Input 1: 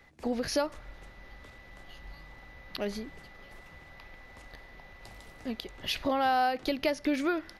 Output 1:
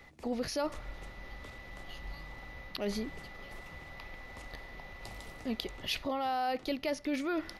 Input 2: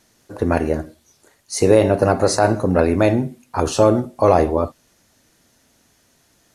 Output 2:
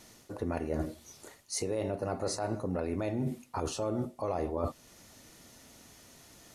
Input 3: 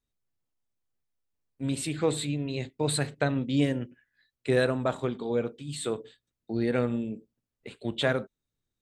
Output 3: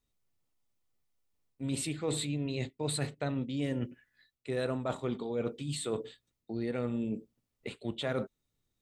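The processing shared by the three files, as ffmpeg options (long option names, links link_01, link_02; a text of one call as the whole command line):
ffmpeg -i in.wav -af "bandreject=frequency=1600:width=9.8,alimiter=limit=-12.5dB:level=0:latency=1:release=366,areverse,acompressor=threshold=-34dB:ratio=6,areverse,volume=3.5dB" out.wav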